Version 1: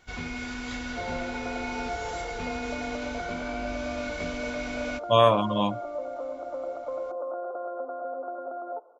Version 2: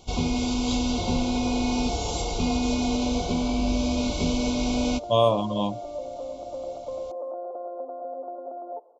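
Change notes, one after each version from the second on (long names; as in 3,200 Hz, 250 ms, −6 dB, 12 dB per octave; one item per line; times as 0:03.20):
first sound +11.5 dB
master: add Butterworth band-reject 1,700 Hz, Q 0.82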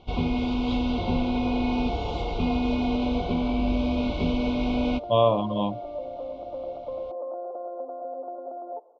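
master: add low-pass filter 3,300 Hz 24 dB per octave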